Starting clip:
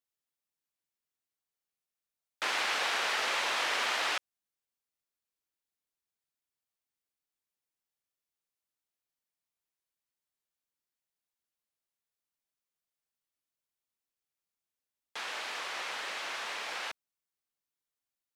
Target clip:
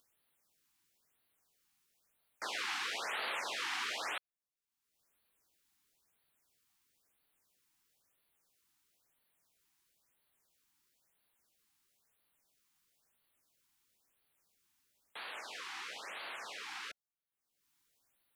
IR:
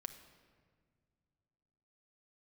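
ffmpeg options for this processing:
-af "acompressor=mode=upward:threshold=0.00224:ratio=2.5,afftfilt=real='re*(1-between(b*sr/1024,490*pow(6800/490,0.5+0.5*sin(2*PI*1*pts/sr))/1.41,490*pow(6800/490,0.5+0.5*sin(2*PI*1*pts/sr))*1.41))':imag='im*(1-between(b*sr/1024,490*pow(6800/490,0.5+0.5*sin(2*PI*1*pts/sr))/1.41,490*pow(6800/490,0.5+0.5*sin(2*PI*1*pts/sr))*1.41))':win_size=1024:overlap=0.75,volume=0.473"

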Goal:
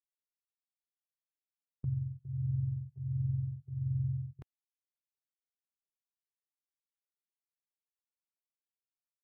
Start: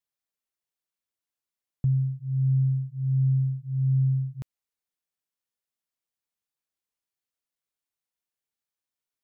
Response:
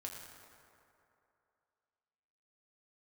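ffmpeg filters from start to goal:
-filter_complex "[0:a]bass=f=250:g=-4,treble=f=4000:g=-11,asplit=3[s0][s1][s2];[s1]asetrate=29433,aresample=44100,atempo=1.49831,volume=0.282[s3];[s2]asetrate=37084,aresample=44100,atempo=1.18921,volume=0.355[s4];[s0][s3][s4]amix=inputs=3:normalize=0,agate=range=0.1:threshold=0.0141:ratio=16:detection=peak,volume=0.422"

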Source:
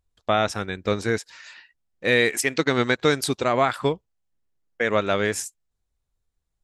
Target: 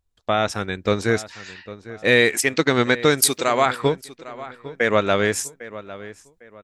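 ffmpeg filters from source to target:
-filter_complex "[0:a]asettb=1/sr,asplit=3[s0][s1][s2];[s0]atrim=end=3.224[s3];[s1]atrim=start=3.22:end=3.66,asetpts=PTS-STARTPTS,afade=t=in:d=0.004:c=qsin,afade=t=out:st=0.436:d=0.004:c=qsin,aemphasis=mode=production:type=bsi[s4];[s2]atrim=start=3.656[s5];[s3][s4]acrossfade=d=0.004:c1=hsin:c2=qsin[s6];[s6][s5]acrossfade=d=0.004:c1=qsin:c2=hsin,dynaudnorm=f=350:g=3:m=1.78,asplit=2[s7][s8];[s8]adelay=803,lowpass=f=3000:p=1,volume=0.158,asplit=2[s9][s10];[s10]adelay=803,lowpass=f=3000:p=1,volume=0.32,asplit=2[s11][s12];[s12]adelay=803,lowpass=f=3000:p=1,volume=0.32[s13];[s9][s11][s13]amix=inputs=3:normalize=0[s14];[s7][s14]amix=inputs=2:normalize=0"

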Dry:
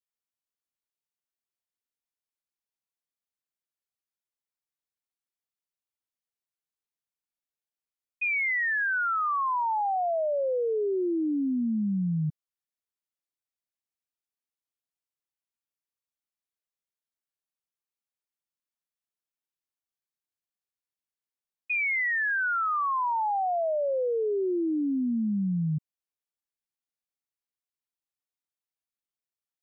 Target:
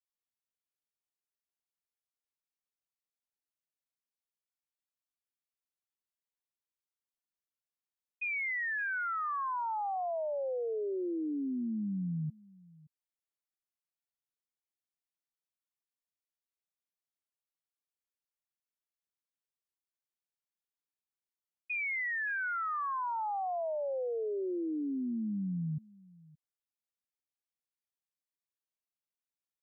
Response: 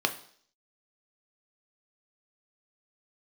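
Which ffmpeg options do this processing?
-filter_complex "[0:a]asettb=1/sr,asplit=3[s0][s1][s2];[s0]atrim=end=22.294[s3];[s1]atrim=start=22.29:end=23.19,asetpts=PTS-STARTPTS,afade=t=in:d=0.004:c=qsin,afade=t=out:st=0.896:d=0.004:c=qsin,bandreject=f=730:w=12[s4];[s2]atrim=start=23.186[s5];[s3][s4]acrossfade=d=0.004:c1=hsin:c2=qsin[s6];[s6][s5]acrossfade=d=0.004:c1=qsin:c2=hsin,asplit=2[s7][s8];[s8]aecho=0:1:570:0.0708[s9];[s7][s9]amix=inputs=2:normalize=0,volume=0.422"

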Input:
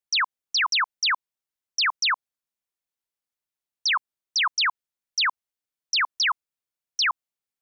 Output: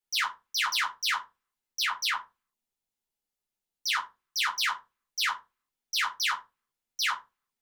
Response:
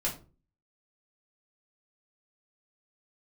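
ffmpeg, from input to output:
-filter_complex "[0:a]asettb=1/sr,asplit=3[s0][s1][s2];[s0]atrim=end=1.824[s3];[s1]atrim=start=1.82:end=3.92,asetpts=PTS-STARTPTS,afade=t=in:d=0.004:c=qsin,afade=t=out:st=2.096:d=0.004:c=qsin,equalizer=f=1600:w=0.91:g=-5[s4];[s2]atrim=start=3.916[s5];[s3][s4]acrossfade=d=0.004:c1=hsin:c2=qsin[s6];[s6][s5]acrossfade=d=0.004:c1=qsin:c2=hsin,asoftclip=type=tanh:threshold=0.0447[s7];[1:a]atrim=start_sample=2205,asetrate=61740,aresample=44100[s8];[s7][s8]afir=irnorm=-1:irlink=0"

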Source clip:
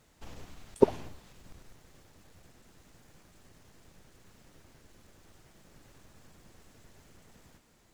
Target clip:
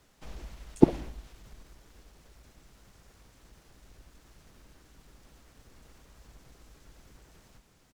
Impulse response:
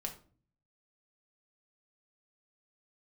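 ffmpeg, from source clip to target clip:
-filter_complex "[0:a]afreqshift=-59,asplit=2[s0][s1];[s1]asetrate=35002,aresample=44100,atempo=1.25992,volume=0.891[s2];[s0][s2]amix=inputs=2:normalize=0,asplit=2[s3][s4];[1:a]atrim=start_sample=2205,asetrate=33516,aresample=44100[s5];[s4][s5]afir=irnorm=-1:irlink=0,volume=0.158[s6];[s3][s6]amix=inputs=2:normalize=0,volume=0.75"

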